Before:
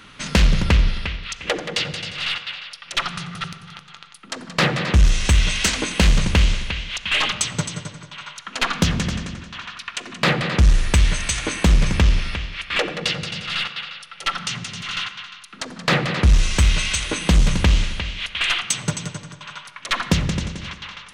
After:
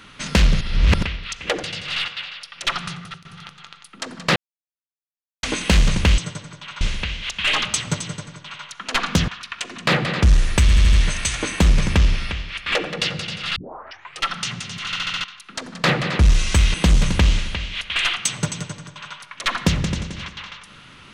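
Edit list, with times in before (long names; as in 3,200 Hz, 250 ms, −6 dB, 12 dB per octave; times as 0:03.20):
0:00.61–0:01.03: reverse
0:01.63–0:01.93: remove
0:03.20–0:03.55: fade out linear, to −18.5 dB
0:04.66–0:05.73: silence
0:07.68–0:08.31: duplicate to 0:06.48
0:08.95–0:09.64: remove
0:10.97: stutter 0.08 s, 5 plays
0:13.60: tape start 0.67 s
0:14.93: stutter in place 0.07 s, 5 plays
0:16.78–0:17.19: remove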